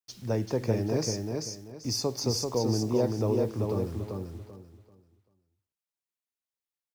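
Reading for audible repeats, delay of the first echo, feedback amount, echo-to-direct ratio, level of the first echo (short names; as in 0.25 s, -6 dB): 3, 0.388 s, 26%, -3.5 dB, -4.0 dB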